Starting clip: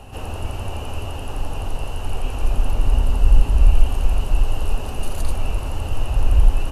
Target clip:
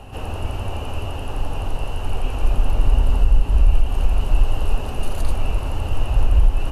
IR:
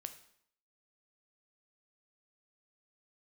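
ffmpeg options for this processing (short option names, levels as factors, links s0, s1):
-filter_complex "[0:a]alimiter=limit=0.473:level=0:latency=1:release=196,asplit=2[s0][s1];[1:a]atrim=start_sample=2205,lowpass=5000[s2];[s1][s2]afir=irnorm=-1:irlink=0,volume=0.891[s3];[s0][s3]amix=inputs=2:normalize=0,volume=0.75"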